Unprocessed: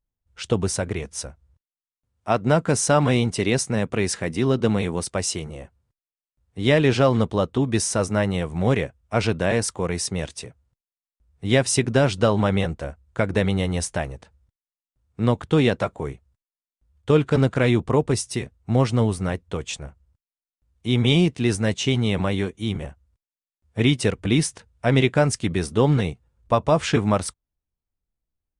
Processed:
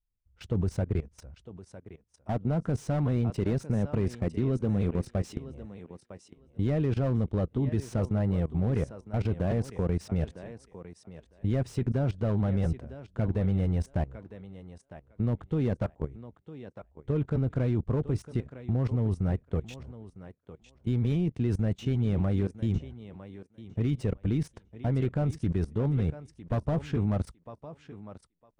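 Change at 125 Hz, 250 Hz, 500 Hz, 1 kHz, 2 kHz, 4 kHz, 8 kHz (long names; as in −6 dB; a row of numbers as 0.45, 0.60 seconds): −4.0 dB, −7.0 dB, −11.5 dB, −14.5 dB, −19.0 dB, below −20 dB, below −20 dB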